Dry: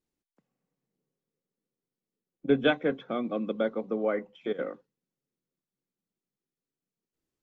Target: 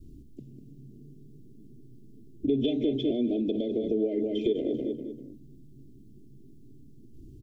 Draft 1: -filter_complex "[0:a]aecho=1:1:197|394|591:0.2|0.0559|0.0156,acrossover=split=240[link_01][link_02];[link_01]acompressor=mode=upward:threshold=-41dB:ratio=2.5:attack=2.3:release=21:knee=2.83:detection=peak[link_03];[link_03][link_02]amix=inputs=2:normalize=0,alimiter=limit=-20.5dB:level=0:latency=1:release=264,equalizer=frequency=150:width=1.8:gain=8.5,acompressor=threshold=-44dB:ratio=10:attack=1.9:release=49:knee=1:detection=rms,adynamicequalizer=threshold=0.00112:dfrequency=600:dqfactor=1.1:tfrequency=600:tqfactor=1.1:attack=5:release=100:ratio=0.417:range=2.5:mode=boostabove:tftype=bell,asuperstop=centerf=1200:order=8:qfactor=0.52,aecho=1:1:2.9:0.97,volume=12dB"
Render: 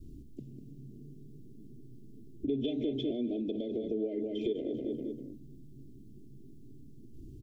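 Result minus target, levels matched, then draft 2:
downward compressor: peak gain reduction +6.5 dB
-filter_complex "[0:a]aecho=1:1:197|394|591:0.2|0.0559|0.0156,acrossover=split=240[link_01][link_02];[link_01]acompressor=mode=upward:threshold=-41dB:ratio=2.5:attack=2.3:release=21:knee=2.83:detection=peak[link_03];[link_03][link_02]amix=inputs=2:normalize=0,alimiter=limit=-20.5dB:level=0:latency=1:release=264,equalizer=frequency=150:width=1.8:gain=8.5,acompressor=threshold=-37dB:ratio=10:attack=1.9:release=49:knee=1:detection=rms,adynamicequalizer=threshold=0.00112:dfrequency=600:dqfactor=1.1:tfrequency=600:tqfactor=1.1:attack=5:release=100:ratio=0.417:range=2.5:mode=boostabove:tftype=bell,asuperstop=centerf=1200:order=8:qfactor=0.52,aecho=1:1:2.9:0.97,volume=12dB"

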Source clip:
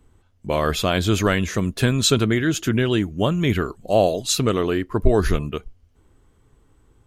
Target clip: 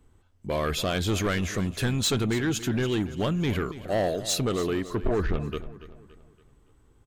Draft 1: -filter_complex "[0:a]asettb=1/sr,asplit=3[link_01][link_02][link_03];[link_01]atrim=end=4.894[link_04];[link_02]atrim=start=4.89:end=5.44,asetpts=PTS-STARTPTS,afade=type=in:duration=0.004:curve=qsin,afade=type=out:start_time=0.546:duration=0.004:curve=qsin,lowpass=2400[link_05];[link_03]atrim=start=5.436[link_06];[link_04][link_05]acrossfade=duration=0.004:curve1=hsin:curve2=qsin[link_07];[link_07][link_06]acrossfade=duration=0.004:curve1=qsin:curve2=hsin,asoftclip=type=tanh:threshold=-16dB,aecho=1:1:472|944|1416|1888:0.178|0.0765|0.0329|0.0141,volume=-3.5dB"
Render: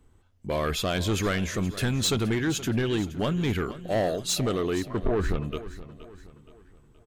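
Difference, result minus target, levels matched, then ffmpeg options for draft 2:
echo 188 ms late
-filter_complex "[0:a]asettb=1/sr,asplit=3[link_01][link_02][link_03];[link_01]atrim=end=4.894[link_04];[link_02]atrim=start=4.89:end=5.44,asetpts=PTS-STARTPTS,afade=type=in:duration=0.004:curve=qsin,afade=type=out:start_time=0.546:duration=0.004:curve=qsin,lowpass=2400[link_05];[link_03]atrim=start=5.436[link_06];[link_04][link_05]acrossfade=duration=0.004:curve1=hsin:curve2=qsin[link_07];[link_07][link_06]acrossfade=duration=0.004:curve1=qsin:curve2=hsin,asoftclip=type=tanh:threshold=-16dB,aecho=1:1:284|568|852|1136:0.178|0.0765|0.0329|0.0141,volume=-3.5dB"

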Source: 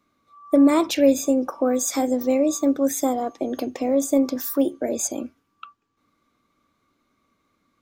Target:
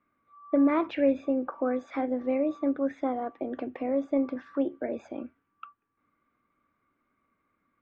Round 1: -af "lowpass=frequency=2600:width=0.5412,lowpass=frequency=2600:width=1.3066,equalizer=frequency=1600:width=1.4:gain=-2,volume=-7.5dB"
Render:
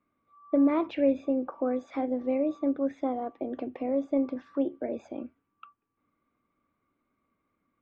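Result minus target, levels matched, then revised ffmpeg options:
2,000 Hz band −5.0 dB
-af "lowpass=frequency=2600:width=0.5412,lowpass=frequency=2600:width=1.3066,equalizer=frequency=1600:width=1.4:gain=5.5,volume=-7.5dB"

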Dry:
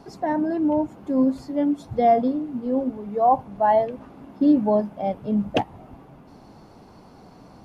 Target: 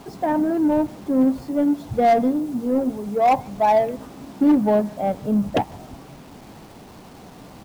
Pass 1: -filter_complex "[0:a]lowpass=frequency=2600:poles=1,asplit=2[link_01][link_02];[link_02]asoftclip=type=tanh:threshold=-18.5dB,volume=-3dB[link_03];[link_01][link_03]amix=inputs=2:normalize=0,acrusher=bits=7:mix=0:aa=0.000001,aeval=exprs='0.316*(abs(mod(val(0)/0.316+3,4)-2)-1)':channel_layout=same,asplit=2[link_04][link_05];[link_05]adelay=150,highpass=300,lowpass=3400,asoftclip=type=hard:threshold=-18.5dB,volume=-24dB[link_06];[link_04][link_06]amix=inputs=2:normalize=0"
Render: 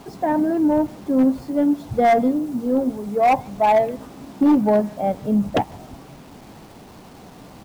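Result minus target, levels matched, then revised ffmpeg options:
soft clipping: distortion −5 dB
-filter_complex "[0:a]lowpass=frequency=2600:poles=1,asplit=2[link_01][link_02];[link_02]asoftclip=type=tanh:threshold=-24.5dB,volume=-3dB[link_03];[link_01][link_03]amix=inputs=2:normalize=0,acrusher=bits=7:mix=0:aa=0.000001,aeval=exprs='0.316*(abs(mod(val(0)/0.316+3,4)-2)-1)':channel_layout=same,asplit=2[link_04][link_05];[link_05]adelay=150,highpass=300,lowpass=3400,asoftclip=type=hard:threshold=-18.5dB,volume=-24dB[link_06];[link_04][link_06]amix=inputs=2:normalize=0"

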